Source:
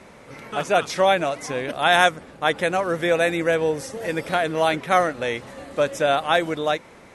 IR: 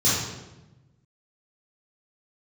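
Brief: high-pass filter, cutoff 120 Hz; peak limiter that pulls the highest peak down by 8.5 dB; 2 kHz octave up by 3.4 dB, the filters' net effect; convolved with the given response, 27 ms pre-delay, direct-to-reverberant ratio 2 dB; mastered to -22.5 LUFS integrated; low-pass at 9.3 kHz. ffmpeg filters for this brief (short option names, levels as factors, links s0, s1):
-filter_complex "[0:a]highpass=120,lowpass=9300,equalizer=f=2000:t=o:g=4.5,alimiter=limit=0.376:level=0:latency=1,asplit=2[s0][s1];[1:a]atrim=start_sample=2205,adelay=27[s2];[s1][s2]afir=irnorm=-1:irlink=0,volume=0.133[s3];[s0][s3]amix=inputs=2:normalize=0,volume=0.794"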